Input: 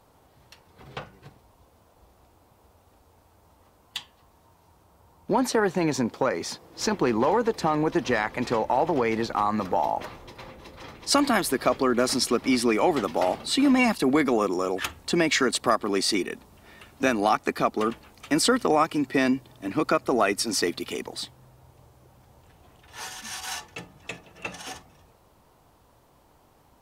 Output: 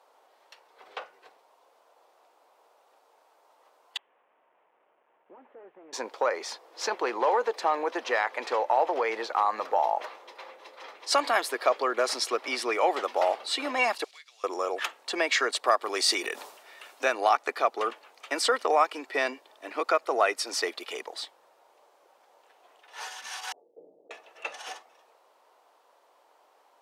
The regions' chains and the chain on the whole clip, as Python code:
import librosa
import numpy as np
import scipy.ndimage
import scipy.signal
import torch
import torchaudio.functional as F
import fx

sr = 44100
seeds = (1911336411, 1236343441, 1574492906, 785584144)

y = fx.chain(x, sr, fx.delta_mod(bps=16000, step_db=-39.0),
    fx.bandpass_q(hz=130.0, q=1.4),
    fx.tilt_eq(slope=3.0), at=(3.97, 5.93))
y = fx.chain(y, sr, fx.block_float(bits=5),
    fx.ladder_bandpass(hz=4900.0, resonance_pct=30),
    fx.band_squash(depth_pct=70), at=(14.04, 14.44))
y = fx.chain(y, sr, fx.high_shelf(hz=4300.0, db=8.5),
    fx.sustainer(db_per_s=62.0), at=(15.81, 17.04))
y = fx.chain(y, sr, fx.steep_lowpass(hz=520.0, slope=36),
    fx.sustainer(db_per_s=27.0), at=(23.52, 24.11))
y = scipy.signal.sosfilt(scipy.signal.butter(4, 470.0, 'highpass', fs=sr, output='sos'), y)
y = fx.high_shelf(y, sr, hz=7700.0, db=-12.0)